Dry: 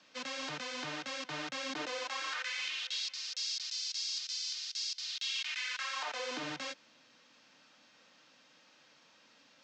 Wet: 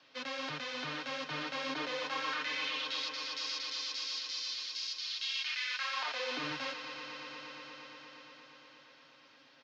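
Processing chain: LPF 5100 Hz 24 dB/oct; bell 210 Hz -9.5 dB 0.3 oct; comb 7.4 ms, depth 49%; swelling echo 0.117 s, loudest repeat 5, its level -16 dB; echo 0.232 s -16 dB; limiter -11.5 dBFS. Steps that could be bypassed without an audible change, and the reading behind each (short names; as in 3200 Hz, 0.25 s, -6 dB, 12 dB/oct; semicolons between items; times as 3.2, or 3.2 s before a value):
limiter -11.5 dBFS: input peak -22.5 dBFS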